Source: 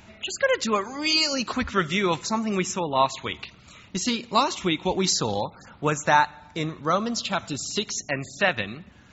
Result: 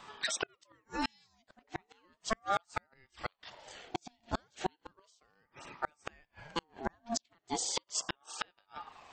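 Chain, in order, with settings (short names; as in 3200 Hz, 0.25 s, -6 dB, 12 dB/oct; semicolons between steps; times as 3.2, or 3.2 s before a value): flipped gate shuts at -17 dBFS, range -41 dB; ring modulator with a swept carrier 770 Hz, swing 40%, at 0.35 Hz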